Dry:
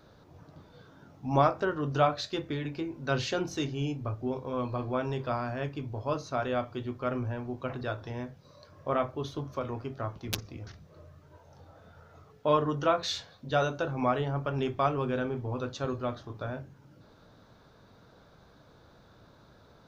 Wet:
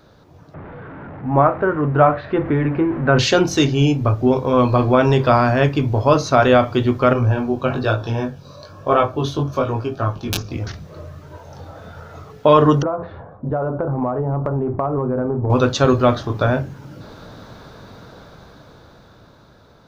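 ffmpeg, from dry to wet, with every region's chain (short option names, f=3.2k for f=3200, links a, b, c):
-filter_complex "[0:a]asettb=1/sr,asplit=3[a][b][c];[a]atrim=end=0.544[d];[b]atrim=start=0.54:end=3.19,asetpts=PTS-STARTPTS,afade=t=in:d=0.004:c=qsin,afade=t=out:st=2.646:d=0.004:c=qsin,aeval=exprs='val(0)+0.5*0.0119*sgn(val(0))':c=same,lowpass=f=1.9k:w=0.5412,lowpass=f=1.9k:w=1.3066[e];[c]atrim=start=3.186[f];[d][e]acrossfade=d=0.004:c1=hsin:c2=qsin[g];[g][f]acrossfade=d=0.004:c1=qsin:c2=hsin,asettb=1/sr,asplit=3[h][i][j];[h]atrim=end=7.134[k];[i]atrim=start=7.13:end=10.52,asetpts=PTS-STARTPTS,afade=t=in:d=0.004:c=qsin,afade=t=out:st=3.386:d=0.004:c=qsin,flanger=delay=17.5:depth=3.9:speed=1.1,asuperstop=centerf=2000:order=4:qfactor=5.1[l];[j]atrim=start=10.516[m];[k][l]acrossfade=d=0.004:c1=hsin:c2=qsin[n];[n][m]acrossfade=d=0.004:c1=qsin:c2=hsin,asettb=1/sr,asplit=3[o][p][q];[o]atrim=end=12.824[r];[p]atrim=start=12.82:end=15.5,asetpts=PTS-STARTPTS,afade=t=in:d=0.004:c=qsin,afade=t=out:st=2.676:d=0.004:c=qsin,lowpass=f=1.1k:w=0.5412,lowpass=f=1.1k:w=1.3066,acompressor=threshold=-35dB:ratio=8:attack=3.2:release=140:knee=1:detection=peak[s];[q]atrim=start=15.496[t];[r][s]acrossfade=d=0.004:c1=hsin:c2=qsin[u];[u][t]acrossfade=d=0.004:c1=qsin:c2=hsin,dynaudnorm=f=320:g=13:m=12dB,alimiter=level_in=8dB:limit=-1dB:release=50:level=0:latency=1,volume=-1dB"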